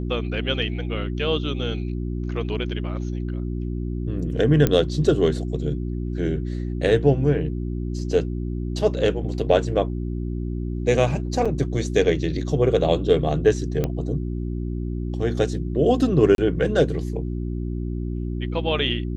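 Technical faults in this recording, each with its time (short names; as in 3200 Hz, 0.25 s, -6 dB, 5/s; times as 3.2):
hum 60 Hz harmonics 6 -27 dBFS
4.67 pop -6 dBFS
11.45–11.46 gap 5.7 ms
13.84 pop -11 dBFS
16.35–16.38 gap 32 ms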